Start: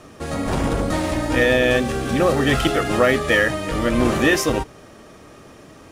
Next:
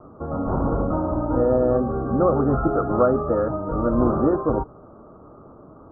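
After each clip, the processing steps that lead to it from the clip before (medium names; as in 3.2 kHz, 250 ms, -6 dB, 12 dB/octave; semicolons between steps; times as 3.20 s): steep low-pass 1.4 kHz 96 dB/octave; trim -1 dB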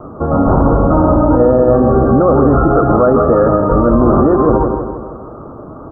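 feedback delay 161 ms, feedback 51%, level -10 dB; loudness maximiser +15 dB; trim -1 dB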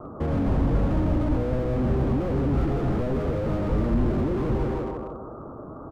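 speakerphone echo 110 ms, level -15 dB; slew-rate limiter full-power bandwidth 52 Hz; trim -8 dB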